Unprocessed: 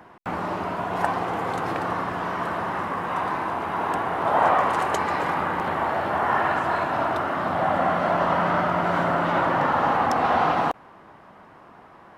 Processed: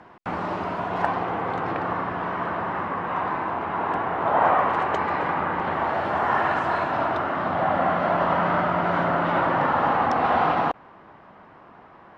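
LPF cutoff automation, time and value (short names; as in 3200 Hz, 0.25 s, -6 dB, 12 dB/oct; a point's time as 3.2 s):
0.75 s 5700 Hz
1.38 s 2900 Hz
5.48 s 2900 Hz
6.12 s 6400 Hz
6.7 s 6400 Hz
7.26 s 3900 Hz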